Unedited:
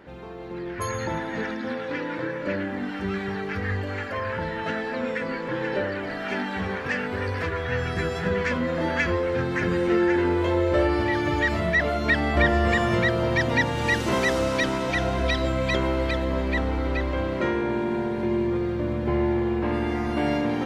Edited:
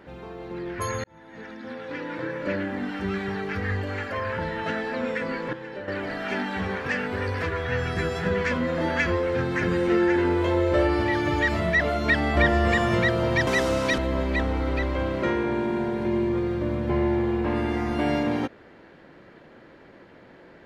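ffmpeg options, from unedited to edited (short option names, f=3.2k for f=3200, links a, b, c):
-filter_complex "[0:a]asplit=6[a][b][c][d][e][f];[a]atrim=end=1.04,asetpts=PTS-STARTPTS,afade=t=out:st=1.036:d=0.004:c=hsin[g];[b]atrim=start=1.04:end=5.532,asetpts=PTS-STARTPTS,afade=t=in:d=1.45[h];[c]atrim=start=5.528:end=5.882,asetpts=PTS-STARTPTS,volume=-10dB[i];[d]atrim=start=5.878:end=13.472[j];[e]atrim=start=14.168:end=14.682[k];[f]atrim=start=16.158[l];[g][h]concat=n=2:v=0:a=1[m];[m][i]acrossfade=d=0.004:c1=hsin:c2=hsin[n];[n][j]acrossfade=d=0.004:c1=hsin:c2=hsin[o];[o][k]acrossfade=d=0.004:c1=hsin:c2=hsin[p];[p][l]acrossfade=d=0.004:c1=hsin:c2=hsin"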